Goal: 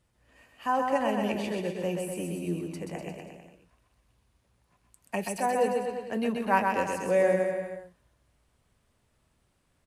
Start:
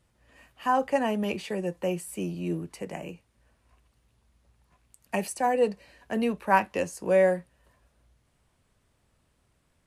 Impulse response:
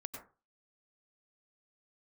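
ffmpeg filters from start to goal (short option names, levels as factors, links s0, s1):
-af "aecho=1:1:130|247|352.3|447.1|532.4:0.631|0.398|0.251|0.158|0.1,volume=0.708"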